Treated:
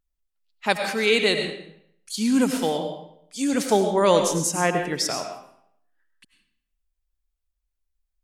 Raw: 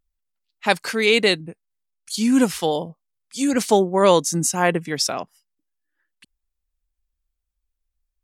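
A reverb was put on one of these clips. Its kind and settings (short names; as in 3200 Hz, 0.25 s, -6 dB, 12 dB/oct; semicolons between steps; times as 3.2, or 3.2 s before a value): digital reverb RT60 0.69 s, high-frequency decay 0.85×, pre-delay 60 ms, DRR 5 dB; gain -3.5 dB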